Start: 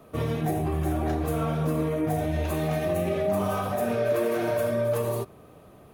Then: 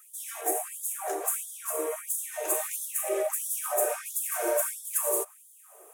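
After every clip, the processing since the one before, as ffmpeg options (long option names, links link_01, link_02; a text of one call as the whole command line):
ffmpeg -i in.wav -af "highshelf=frequency=5800:width_type=q:width=3:gain=12,afftfilt=real='re*gte(b*sr/1024,320*pow(3300/320,0.5+0.5*sin(2*PI*1.5*pts/sr)))':imag='im*gte(b*sr/1024,320*pow(3300/320,0.5+0.5*sin(2*PI*1.5*pts/sr)))':win_size=1024:overlap=0.75" out.wav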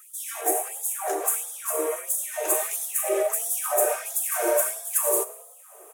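ffmpeg -i in.wav -filter_complex "[0:a]asplit=5[link_01][link_02][link_03][link_04][link_05];[link_02]adelay=100,afreqshift=32,volume=-18dB[link_06];[link_03]adelay=200,afreqshift=64,volume=-24.6dB[link_07];[link_04]adelay=300,afreqshift=96,volume=-31.1dB[link_08];[link_05]adelay=400,afreqshift=128,volume=-37.7dB[link_09];[link_01][link_06][link_07][link_08][link_09]amix=inputs=5:normalize=0,volume=4.5dB" out.wav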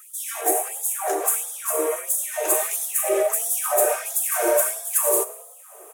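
ffmpeg -i in.wav -af "asoftclip=type=tanh:threshold=-10dB,volume=3.5dB" out.wav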